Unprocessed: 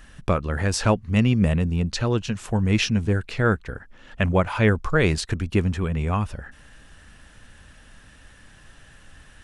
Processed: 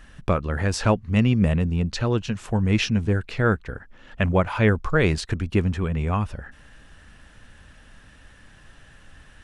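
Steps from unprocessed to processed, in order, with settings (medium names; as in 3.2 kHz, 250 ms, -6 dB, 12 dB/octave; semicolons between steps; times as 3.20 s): treble shelf 6 kHz -6.5 dB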